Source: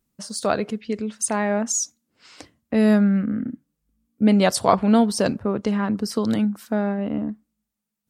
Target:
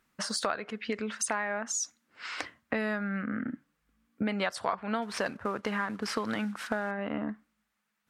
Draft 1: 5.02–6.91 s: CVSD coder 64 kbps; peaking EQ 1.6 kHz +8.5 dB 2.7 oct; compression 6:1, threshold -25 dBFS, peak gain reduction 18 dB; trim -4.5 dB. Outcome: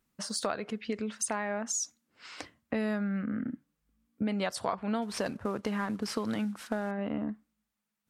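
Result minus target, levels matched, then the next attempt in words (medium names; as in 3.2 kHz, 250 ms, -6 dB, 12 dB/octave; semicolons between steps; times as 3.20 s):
2 kHz band -5.5 dB
5.02–6.91 s: CVSD coder 64 kbps; peaking EQ 1.6 kHz +20 dB 2.7 oct; compression 6:1, threshold -25 dBFS, peak gain reduction 24.5 dB; trim -4.5 dB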